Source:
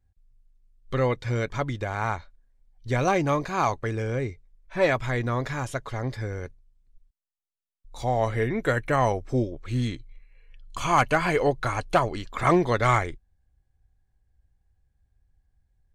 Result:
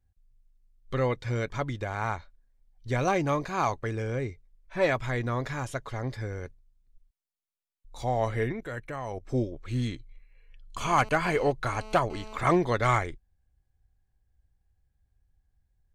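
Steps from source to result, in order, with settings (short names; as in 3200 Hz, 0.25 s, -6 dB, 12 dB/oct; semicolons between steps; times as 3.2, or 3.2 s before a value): 8.52–9.27 level quantiser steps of 16 dB; 10.81–12.38 GSM buzz -43 dBFS; gain -3 dB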